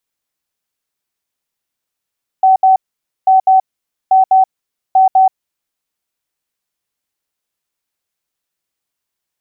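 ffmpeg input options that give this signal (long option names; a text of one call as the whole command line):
ffmpeg -f lavfi -i "aevalsrc='0.562*sin(2*PI*760*t)*clip(min(mod(mod(t,0.84),0.2),0.13-mod(mod(t,0.84),0.2))/0.005,0,1)*lt(mod(t,0.84),0.4)':duration=3.36:sample_rate=44100" out.wav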